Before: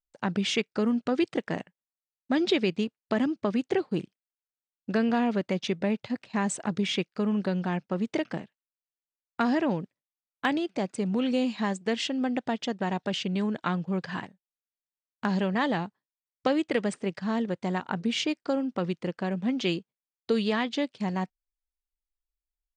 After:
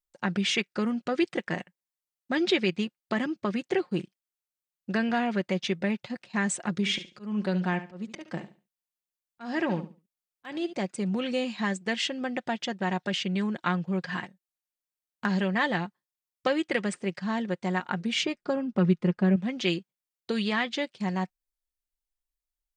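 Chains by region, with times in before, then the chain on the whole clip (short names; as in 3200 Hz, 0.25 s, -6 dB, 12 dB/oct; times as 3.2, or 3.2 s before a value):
6.75–10.73 auto swell 0.211 s + feedback echo 71 ms, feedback 24%, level -13 dB
18.23–19.36 tilt -2.5 dB/oct + comb 4.8 ms, depth 47%
whole clip: high shelf 5700 Hz +5 dB; comb 5.6 ms, depth 42%; dynamic EQ 1900 Hz, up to +6 dB, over -43 dBFS, Q 1.2; gain -2.5 dB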